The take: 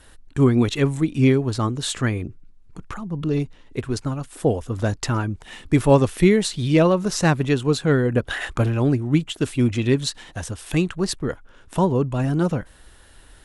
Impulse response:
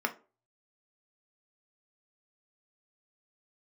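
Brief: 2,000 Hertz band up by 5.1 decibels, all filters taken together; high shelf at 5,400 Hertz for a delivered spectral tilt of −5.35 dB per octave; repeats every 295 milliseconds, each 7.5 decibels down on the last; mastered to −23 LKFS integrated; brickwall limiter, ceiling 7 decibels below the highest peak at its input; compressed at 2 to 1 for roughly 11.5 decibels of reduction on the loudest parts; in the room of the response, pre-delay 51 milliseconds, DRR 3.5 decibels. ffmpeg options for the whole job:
-filter_complex "[0:a]equalizer=frequency=2000:width_type=o:gain=7,highshelf=frequency=5400:gain=-5,acompressor=threshold=-32dB:ratio=2,alimiter=limit=-21.5dB:level=0:latency=1,aecho=1:1:295|590|885|1180|1475:0.422|0.177|0.0744|0.0312|0.0131,asplit=2[link_01][link_02];[1:a]atrim=start_sample=2205,adelay=51[link_03];[link_02][link_03]afir=irnorm=-1:irlink=0,volume=-11dB[link_04];[link_01][link_04]amix=inputs=2:normalize=0,volume=7.5dB"

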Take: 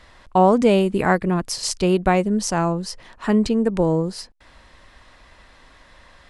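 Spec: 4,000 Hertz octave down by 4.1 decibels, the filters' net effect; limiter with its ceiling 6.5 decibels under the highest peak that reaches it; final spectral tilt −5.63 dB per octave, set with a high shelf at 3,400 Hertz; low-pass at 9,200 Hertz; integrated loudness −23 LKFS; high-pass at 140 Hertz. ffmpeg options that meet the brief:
ffmpeg -i in.wav -af "highpass=140,lowpass=9200,highshelf=frequency=3400:gain=3.5,equalizer=frequency=4000:width_type=o:gain=-9,volume=-1dB,alimiter=limit=-12dB:level=0:latency=1" out.wav

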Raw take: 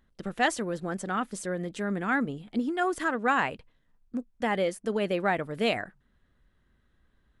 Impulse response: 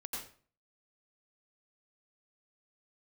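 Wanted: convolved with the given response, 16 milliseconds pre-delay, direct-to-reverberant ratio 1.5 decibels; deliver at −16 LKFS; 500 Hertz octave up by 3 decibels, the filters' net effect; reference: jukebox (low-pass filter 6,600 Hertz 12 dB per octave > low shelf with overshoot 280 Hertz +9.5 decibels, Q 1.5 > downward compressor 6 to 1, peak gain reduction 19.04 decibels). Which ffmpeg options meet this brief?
-filter_complex "[0:a]equalizer=frequency=500:width_type=o:gain=6,asplit=2[link_01][link_02];[1:a]atrim=start_sample=2205,adelay=16[link_03];[link_02][link_03]afir=irnorm=-1:irlink=0,volume=-1.5dB[link_04];[link_01][link_04]amix=inputs=2:normalize=0,lowpass=6600,lowshelf=frequency=280:width_type=q:width=1.5:gain=9.5,acompressor=threshold=-33dB:ratio=6,volume=20dB"

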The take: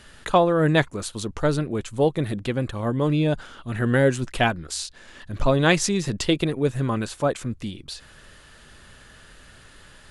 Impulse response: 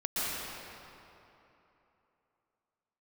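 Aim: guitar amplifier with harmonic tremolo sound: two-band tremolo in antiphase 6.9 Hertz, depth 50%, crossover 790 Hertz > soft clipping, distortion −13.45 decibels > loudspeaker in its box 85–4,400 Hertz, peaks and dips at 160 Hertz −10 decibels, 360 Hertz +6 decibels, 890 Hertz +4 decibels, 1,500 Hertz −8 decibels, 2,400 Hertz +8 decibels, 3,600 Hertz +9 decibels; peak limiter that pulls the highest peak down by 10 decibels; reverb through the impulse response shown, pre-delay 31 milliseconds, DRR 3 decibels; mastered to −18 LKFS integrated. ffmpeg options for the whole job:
-filter_complex "[0:a]alimiter=limit=-14.5dB:level=0:latency=1,asplit=2[link_01][link_02];[1:a]atrim=start_sample=2205,adelay=31[link_03];[link_02][link_03]afir=irnorm=-1:irlink=0,volume=-11.5dB[link_04];[link_01][link_04]amix=inputs=2:normalize=0,acrossover=split=790[link_05][link_06];[link_05]aeval=exprs='val(0)*(1-0.5/2+0.5/2*cos(2*PI*6.9*n/s))':channel_layout=same[link_07];[link_06]aeval=exprs='val(0)*(1-0.5/2-0.5/2*cos(2*PI*6.9*n/s))':channel_layout=same[link_08];[link_07][link_08]amix=inputs=2:normalize=0,asoftclip=threshold=-21dB,highpass=85,equalizer=frequency=160:width_type=q:width=4:gain=-10,equalizer=frequency=360:width_type=q:width=4:gain=6,equalizer=frequency=890:width_type=q:width=4:gain=4,equalizer=frequency=1500:width_type=q:width=4:gain=-8,equalizer=frequency=2400:width_type=q:width=4:gain=8,equalizer=frequency=3600:width_type=q:width=4:gain=9,lowpass=frequency=4400:width=0.5412,lowpass=frequency=4400:width=1.3066,volume=11dB"

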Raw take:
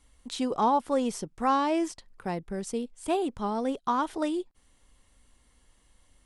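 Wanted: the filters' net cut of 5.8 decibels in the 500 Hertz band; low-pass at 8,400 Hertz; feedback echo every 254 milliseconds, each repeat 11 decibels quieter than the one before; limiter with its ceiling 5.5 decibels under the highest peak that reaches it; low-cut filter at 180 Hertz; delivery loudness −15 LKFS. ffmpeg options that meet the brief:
ffmpeg -i in.wav -af "highpass=180,lowpass=8400,equalizer=frequency=500:width_type=o:gain=-7.5,alimiter=limit=-22dB:level=0:latency=1,aecho=1:1:254|508|762:0.282|0.0789|0.0221,volume=18.5dB" out.wav

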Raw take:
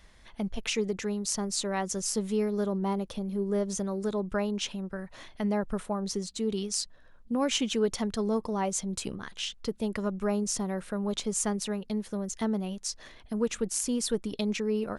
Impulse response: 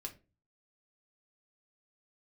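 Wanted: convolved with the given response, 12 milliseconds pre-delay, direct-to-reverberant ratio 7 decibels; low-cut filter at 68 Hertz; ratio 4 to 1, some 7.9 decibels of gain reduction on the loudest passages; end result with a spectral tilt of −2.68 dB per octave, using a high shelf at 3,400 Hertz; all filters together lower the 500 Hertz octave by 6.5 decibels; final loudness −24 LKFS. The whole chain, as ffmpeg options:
-filter_complex "[0:a]highpass=68,equalizer=frequency=500:width_type=o:gain=-8.5,highshelf=frequency=3400:gain=8,acompressor=threshold=-30dB:ratio=4,asplit=2[link_01][link_02];[1:a]atrim=start_sample=2205,adelay=12[link_03];[link_02][link_03]afir=irnorm=-1:irlink=0,volume=-4dB[link_04];[link_01][link_04]amix=inputs=2:normalize=0,volume=9.5dB"

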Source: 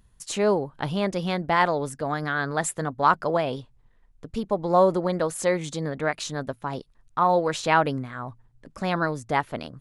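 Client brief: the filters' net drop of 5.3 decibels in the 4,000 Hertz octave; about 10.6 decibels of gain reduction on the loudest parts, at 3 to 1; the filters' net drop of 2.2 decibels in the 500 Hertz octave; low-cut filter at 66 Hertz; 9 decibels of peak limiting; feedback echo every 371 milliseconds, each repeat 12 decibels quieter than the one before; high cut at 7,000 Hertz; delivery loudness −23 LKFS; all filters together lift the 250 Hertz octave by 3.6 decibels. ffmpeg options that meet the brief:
ffmpeg -i in.wav -af "highpass=66,lowpass=7000,equalizer=frequency=250:width_type=o:gain=7,equalizer=frequency=500:width_type=o:gain=-4.5,equalizer=frequency=4000:width_type=o:gain=-6.5,acompressor=threshold=-29dB:ratio=3,alimiter=level_in=2dB:limit=-24dB:level=0:latency=1,volume=-2dB,aecho=1:1:371|742|1113:0.251|0.0628|0.0157,volume=13.5dB" out.wav

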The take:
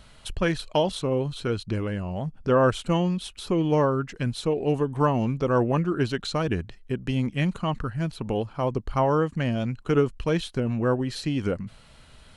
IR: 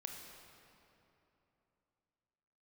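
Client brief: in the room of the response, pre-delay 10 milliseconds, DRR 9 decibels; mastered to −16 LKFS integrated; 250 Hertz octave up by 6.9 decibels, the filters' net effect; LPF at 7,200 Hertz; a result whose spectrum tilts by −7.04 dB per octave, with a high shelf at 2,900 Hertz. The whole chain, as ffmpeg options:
-filter_complex "[0:a]lowpass=7200,equalizer=frequency=250:width_type=o:gain=9,highshelf=frequency=2900:gain=-5,asplit=2[link_01][link_02];[1:a]atrim=start_sample=2205,adelay=10[link_03];[link_02][link_03]afir=irnorm=-1:irlink=0,volume=-6.5dB[link_04];[link_01][link_04]amix=inputs=2:normalize=0,volume=6dB"

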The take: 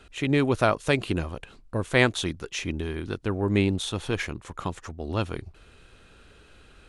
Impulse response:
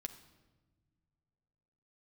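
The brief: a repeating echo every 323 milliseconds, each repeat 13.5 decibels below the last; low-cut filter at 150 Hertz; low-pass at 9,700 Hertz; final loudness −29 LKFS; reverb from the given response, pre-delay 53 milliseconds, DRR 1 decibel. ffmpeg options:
-filter_complex "[0:a]highpass=150,lowpass=9700,aecho=1:1:323|646:0.211|0.0444,asplit=2[link_01][link_02];[1:a]atrim=start_sample=2205,adelay=53[link_03];[link_02][link_03]afir=irnorm=-1:irlink=0,volume=2dB[link_04];[link_01][link_04]amix=inputs=2:normalize=0,volume=-4dB"

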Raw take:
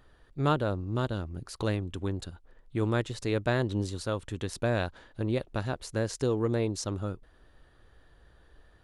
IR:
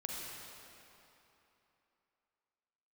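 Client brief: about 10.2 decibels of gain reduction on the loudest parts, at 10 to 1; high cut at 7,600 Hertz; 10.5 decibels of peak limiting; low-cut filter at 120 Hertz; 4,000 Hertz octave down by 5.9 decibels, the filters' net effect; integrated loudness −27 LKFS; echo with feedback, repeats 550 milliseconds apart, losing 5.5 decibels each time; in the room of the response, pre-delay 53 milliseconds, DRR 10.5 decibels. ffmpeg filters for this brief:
-filter_complex "[0:a]highpass=120,lowpass=7600,equalizer=frequency=4000:width_type=o:gain=-7,acompressor=threshold=-33dB:ratio=10,alimiter=level_in=7dB:limit=-24dB:level=0:latency=1,volume=-7dB,aecho=1:1:550|1100|1650|2200|2750|3300|3850:0.531|0.281|0.149|0.079|0.0419|0.0222|0.0118,asplit=2[link_01][link_02];[1:a]atrim=start_sample=2205,adelay=53[link_03];[link_02][link_03]afir=irnorm=-1:irlink=0,volume=-11.5dB[link_04];[link_01][link_04]amix=inputs=2:normalize=0,volume=15.5dB"

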